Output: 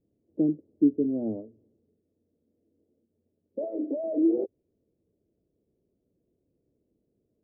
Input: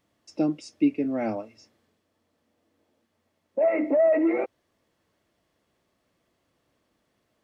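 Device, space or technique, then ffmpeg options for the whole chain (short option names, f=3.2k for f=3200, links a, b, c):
under water: -filter_complex "[0:a]lowpass=f=450:w=0.5412,lowpass=f=450:w=1.3066,equalizer=f=420:t=o:w=0.34:g=5.5,asettb=1/sr,asplit=3[a][b][c];[a]atrim=end=3.644[d];[b]atrim=start=3.64:end=4.04,asetpts=PTS-STARTPTS,afade=t=in:d=0.004:c=qsin,afade=t=out:st=0.396:d=0.004:c=qsin,highpass=f=410:p=1[e];[c]atrim=start=4.036[f];[d][e]acrossfade=d=0.004:c1=hsin:c2=qsin[g];[g][f]acrossfade=d=0.004:c1=qsin:c2=hsin"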